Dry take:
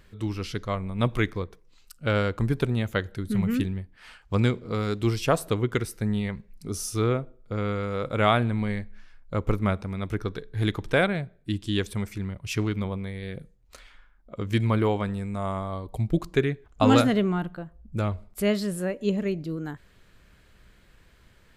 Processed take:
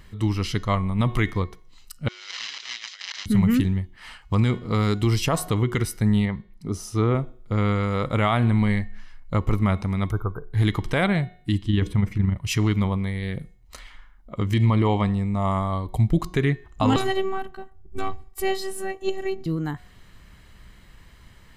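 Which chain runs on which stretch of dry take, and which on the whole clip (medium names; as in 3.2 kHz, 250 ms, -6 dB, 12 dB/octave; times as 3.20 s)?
2.08–3.26 s: one-bit delta coder 32 kbps, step -25 dBFS + Chebyshev high-pass 2.8 kHz + compressor with a negative ratio -42 dBFS, ratio -0.5
6.25–7.15 s: high-pass 660 Hz 6 dB/octave + tilt EQ -4 dB/octave
10.11–10.53 s: brick-wall FIR band-stop 1.6–11 kHz + peaking EQ 240 Hz -11.5 dB 1 oct
11.62–12.36 s: tone controls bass +6 dB, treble -13 dB + hum notches 60/120/180/240/300/360/420/480/540/600 Hz + AM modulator 24 Hz, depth 30%
14.54–15.51 s: low-pass 7.2 kHz + peaking EQ 1.5 kHz -11.5 dB 0.22 oct + tape noise reduction on one side only decoder only
16.96–19.46 s: partial rectifier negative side -3 dB + robot voice 382 Hz
whole clip: comb 1 ms, depth 38%; de-hum 363.8 Hz, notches 19; peak limiter -16 dBFS; trim +5.5 dB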